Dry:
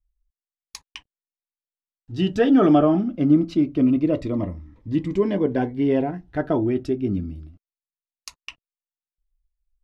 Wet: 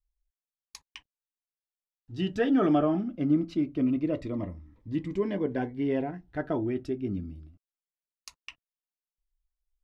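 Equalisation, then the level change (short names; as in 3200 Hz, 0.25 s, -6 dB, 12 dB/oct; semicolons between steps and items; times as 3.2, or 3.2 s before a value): dynamic EQ 1900 Hz, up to +4 dB, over -44 dBFS, Q 1.7; -8.0 dB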